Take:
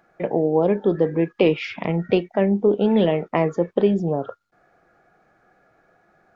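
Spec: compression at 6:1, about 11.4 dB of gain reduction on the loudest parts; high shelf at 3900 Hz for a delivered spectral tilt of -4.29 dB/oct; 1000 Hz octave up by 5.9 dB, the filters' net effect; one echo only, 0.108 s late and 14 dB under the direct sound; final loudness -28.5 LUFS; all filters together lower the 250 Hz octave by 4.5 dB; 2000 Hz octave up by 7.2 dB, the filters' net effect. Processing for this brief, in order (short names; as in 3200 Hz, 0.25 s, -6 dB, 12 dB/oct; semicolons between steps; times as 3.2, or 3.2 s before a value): bell 250 Hz -7.5 dB; bell 1000 Hz +7 dB; bell 2000 Hz +6 dB; high shelf 3900 Hz +4.5 dB; compressor 6:1, threshold -26 dBFS; echo 0.108 s -14 dB; gain +2 dB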